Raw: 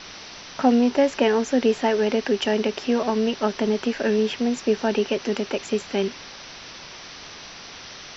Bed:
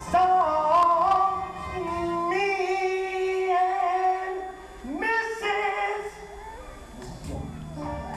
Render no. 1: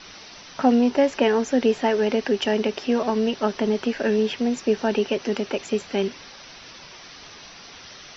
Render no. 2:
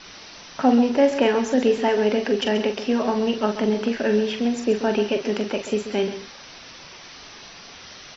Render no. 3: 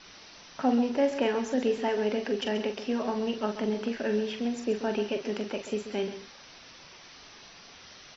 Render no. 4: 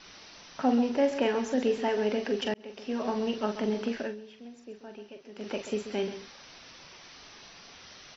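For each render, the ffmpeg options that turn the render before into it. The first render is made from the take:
ffmpeg -i in.wav -af "afftdn=noise_reduction=6:noise_floor=-41" out.wav
ffmpeg -i in.wav -filter_complex "[0:a]asplit=2[link_01][link_02];[link_02]adelay=43,volume=-8dB[link_03];[link_01][link_03]amix=inputs=2:normalize=0,aecho=1:1:134:0.266" out.wav
ffmpeg -i in.wav -af "volume=-8dB" out.wav
ffmpeg -i in.wav -filter_complex "[0:a]asplit=4[link_01][link_02][link_03][link_04];[link_01]atrim=end=2.54,asetpts=PTS-STARTPTS,afade=type=out:start_time=2.536:duration=0.004:curve=hsin[link_05];[link_02]atrim=start=2.54:end=4.15,asetpts=PTS-STARTPTS,afade=type=in:duration=0.55,afade=type=out:start_time=1.45:duration=0.16:silence=0.158489[link_06];[link_03]atrim=start=4.15:end=5.35,asetpts=PTS-STARTPTS,volume=-16dB[link_07];[link_04]atrim=start=5.35,asetpts=PTS-STARTPTS,afade=type=in:duration=0.16:silence=0.158489[link_08];[link_05][link_06][link_07][link_08]concat=n=4:v=0:a=1" out.wav

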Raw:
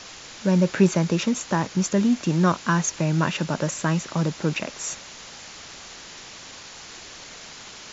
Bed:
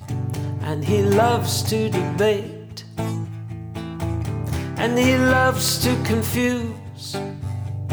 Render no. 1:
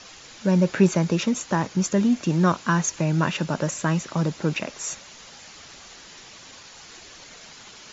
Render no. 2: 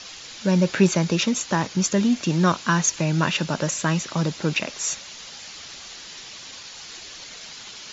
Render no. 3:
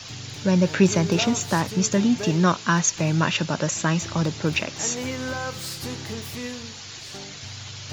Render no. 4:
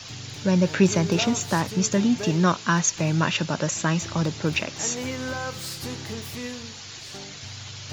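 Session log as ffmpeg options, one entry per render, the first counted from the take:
ffmpeg -i in.wav -af "afftdn=noise_reduction=6:noise_floor=-42" out.wav
ffmpeg -i in.wav -af "equalizer=frequency=4100:width=0.67:gain=7.5" out.wav
ffmpeg -i in.wav -i bed.wav -filter_complex "[1:a]volume=-13.5dB[link_01];[0:a][link_01]amix=inputs=2:normalize=0" out.wav
ffmpeg -i in.wav -af "volume=-1dB" out.wav

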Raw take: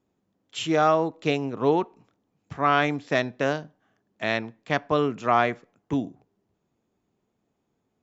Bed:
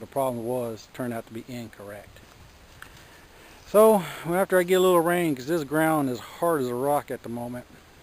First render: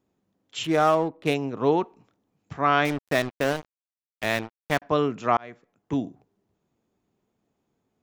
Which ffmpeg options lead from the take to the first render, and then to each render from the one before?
ffmpeg -i in.wav -filter_complex "[0:a]asplit=3[link_01][link_02][link_03];[link_01]afade=type=out:start_time=0.63:duration=0.02[link_04];[link_02]adynamicsmooth=sensitivity=8:basefreq=1600,afade=type=in:start_time=0.63:duration=0.02,afade=type=out:start_time=1.33:duration=0.02[link_05];[link_03]afade=type=in:start_time=1.33:duration=0.02[link_06];[link_04][link_05][link_06]amix=inputs=3:normalize=0,asettb=1/sr,asplit=3[link_07][link_08][link_09];[link_07]atrim=end=2.854[link_10];[link_08]atrim=start=2.85:end=4.82,asetpts=PTS-STARTPTS,afade=type=in:duration=0.004:curve=qsin,afade=type=out:start_time=1.966:duration=0.004:curve=qsin,acrusher=bits=4:mix=0:aa=0.5[link_11];[link_09]atrim=start=4.816[link_12];[link_10][link_11]acrossfade=duration=0.004:curve1=hsin:curve2=qsin[link_13];[link_13][link_12]acrossfade=duration=0.004:curve1=qsin:curve2=hsin,asplit=2[link_14][link_15];[link_14]atrim=end=5.37,asetpts=PTS-STARTPTS,afade=type=out:start_time=5.366:duration=0.004:curve=hsin[link_16];[link_15]atrim=start=5.37,asetpts=PTS-STARTPTS,afade=type=in:duration=0.62[link_17];[link_16][link_17]concat=n=2:v=0:a=1" out.wav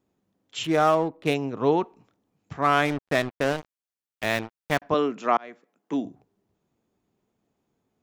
ffmpeg -i in.wav -filter_complex "[0:a]asettb=1/sr,asplit=3[link_01][link_02][link_03];[link_01]atrim=end=2.624[link_04];[link_02]atrim=start=2.62:end=3.58,asetpts=PTS-STARTPTS,afade=type=in:duration=0.004:curve=qsin,afade=type=out:start_time=0.956:duration=0.004:curve=qsin,adynamicsmooth=sensitivity=6:basefreq=2700[link_05];[link_03]atrim=start=3.576[link_06];[link_04][link_05]acrossfade=duration=0.004:curve1=hsin:curve2=qsin[link_07];[link_07][link_06]acrossfade=duration=0.004:curve1=qsin:curve2=hsin,asettb=1/sr,asplit=3[link_08][link_09][link_10];[link_08]atrim=end=4.944[link_11];[link_09]atrim=start=4.94:end=6.06,asetpts=PTS-STARTPTS,afade=type=in:duration=0.004:curve=qsin,afade=type=out:start_time=1.116:duration=0.004:curve=qsin,highpass=frequency=200:width=0.5412,highpass=frequency=200:width=1.3066[link_12];[link_10]atrim=start=6.056[link_13];[link_11][link_12]acrossfade=duration=0.004:curve1=hsin:curve2=qsin[link_14];[link_14][link_13]acrossfade=duration=0.004:curve1=qsin:curve2=hsin" out.wav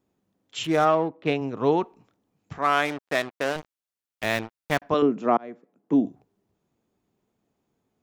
ffmpeg -i in.wav -filter_complex "[0:a]asplit=3[link_01][link_02][link_03];[link_01]afade=type=out:start_time=0.84:duration=0.02[link_04];[link_02]highpass=110,lowpass=3500,afade=type=in:start_time=0.84:duration=0.02,afade=type=out:start_time=1.4:duration=0.02[link_05];[link_03]afade=type=in:start_time=1.4:duration=0.02[link_06];[link_04][link_05][link_06]amix=inputs=3:normalize=0,asettb=1/sr,asplit=3[link_07][link_08][link_09];[link_07]atrim=end=2.584[link_10];[link_08]atrim=start=2.58:end=3.56,asetpts=PTS-STARTPTS,afade=type=in:duration=0.004:curve=qsin,afade=type=out:start_time=0.976:duration=0.004:curve=qsin,highpass=frequency=420:poles=1[link_11];[link_09]atrim=start=3.556[link_12];[link_10][link_11]acrossfade=duration=0.004:curve1=hsin:curve2=qsin[link_13];[link_13][link_12]acrossfade=duration=0.004:curve1=qsin:curve2=hsin,asettb=1/sr,asplit=3[link_14][link_15][link_16];[link_14]atrim=end=5.024[link_17];[link_15]atrim=start=5.02:end=6.06,asetpts=PTS-STARTPTS,afade=type=in:duration=0.004:curve=qsin,afade=type=out:start_time=1.036:duration=0.004:curve=qsin,tiltshelf=frequency=830:gain=9[link_18];[link_16]atrim=start=6.056[link_19];[link_17][link_18]acrossfade=duration=0.004:curve1=hsin:curve2=qsin[link_20];[link_20][link_19]acrossfade=duration=0.004:curve1=qsin:curve2=hsin" out.wav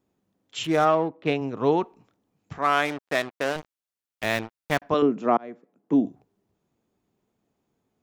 ffmpeg -i in.wav -af anull out.wav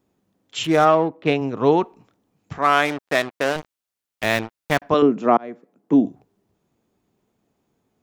ffmpeg -i in.wav -af "volume=5dB,alimiter=limit=-3dB:level=0:latency=1" out.wav

